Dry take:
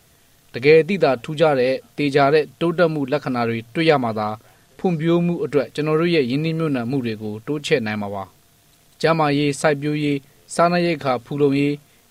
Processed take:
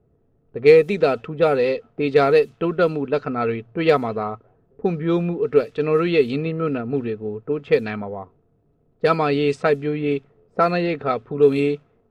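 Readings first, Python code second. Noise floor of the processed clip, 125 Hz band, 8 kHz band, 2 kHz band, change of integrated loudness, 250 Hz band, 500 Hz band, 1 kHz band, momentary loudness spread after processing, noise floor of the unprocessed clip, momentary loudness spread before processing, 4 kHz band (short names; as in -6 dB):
-63 dBFS, -4.0 dB, under -15 dB, -3.5 dB, -0.5 dB, -3.0 dB, +0.5 dB, -2.0 dB, 11 LU, -55 dBFS, 10 LU, -6.0 dB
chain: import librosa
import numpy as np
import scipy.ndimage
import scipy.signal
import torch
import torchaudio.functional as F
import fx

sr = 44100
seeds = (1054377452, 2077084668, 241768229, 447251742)

y = fx.cheby_harmonics(x, sr, harmonics=(6, 8), levels_db=(-33, -32), full_scale_db=-1.5)
y = fx.small_body(y, sr, hz=(430.0, 1300.0, 2600.0), ring_ms=35, db=8)
y = fx.env_lowpass(y, sr, base_hz=460.0, full_db=-8.5)
y = F.gain(torch.from_numpy(y), -4.0).numpy()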